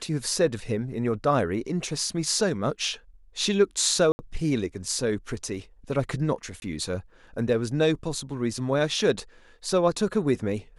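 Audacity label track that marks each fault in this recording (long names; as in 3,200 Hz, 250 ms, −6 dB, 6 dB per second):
4.120000	4.190000	drop-out 70 ms
6.600000	6.620000	drop-out 21 ms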